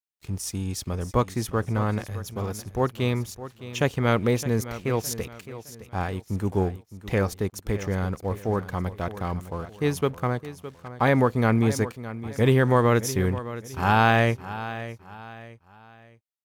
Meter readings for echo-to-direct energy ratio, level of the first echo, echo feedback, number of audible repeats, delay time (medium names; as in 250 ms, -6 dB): -13.5 dB, -14.0 dB, 36%, 3, 613 ms